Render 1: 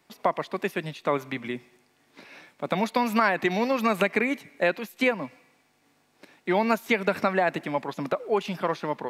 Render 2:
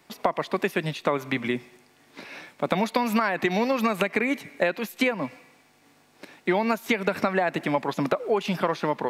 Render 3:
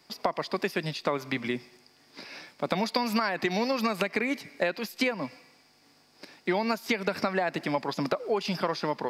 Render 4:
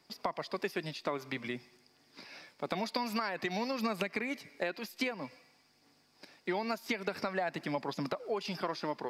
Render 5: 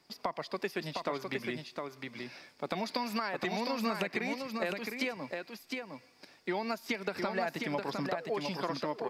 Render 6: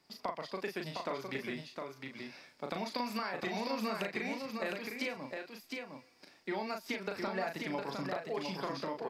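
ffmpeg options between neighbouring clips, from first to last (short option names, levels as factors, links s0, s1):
-af "acompressor=threshold=0.0501:ratio=6,volume=2.11"
-af "equalizer=f=4900:t=o:w=0.32:g=15,volume=0.631"
-af "aphaser=in_gain=1:out_gain=1:delay=3.4:decay=0.24:speed=0.51:type=triangular,volume=0.447"
-af "aecho=1:1:709:0.596"
-filter_complex "[0:a]asplit=2[s0][s1];[s1]adelay=37,volume=0.562[s2];[s0][s2]amix=inputs=2:normalize=0,volume=0.631"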